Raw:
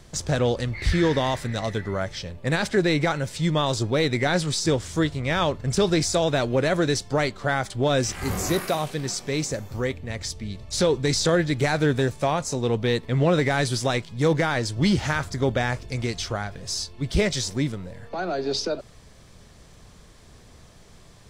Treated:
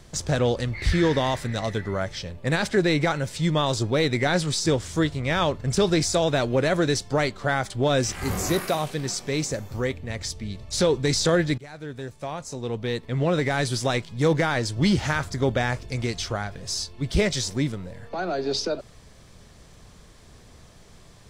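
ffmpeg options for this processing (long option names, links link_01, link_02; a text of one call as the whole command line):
ffmpeg -i in.wav -filter_complex "[0:a]asplit=2[link_01][link_02];[link_01]atrim=end=11.58,asetpts=PTS-STARTPTS,afade=type=out:start_time=11.576:duration=0.004:curve=hsin:silence=0.0707946[link_03];[link_02]atrim=start=11.58,asetpts=PTS-STARTPTS,afade=type=in:duration=2.42:silence=0.0707946[link_04];[link_03][link_04]concat=n=2:v=0:a=1" out.wav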